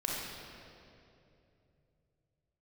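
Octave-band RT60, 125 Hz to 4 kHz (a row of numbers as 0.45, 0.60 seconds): 4.5, 3.3, 3.2, 2.4, 2.2, 1.9 seconds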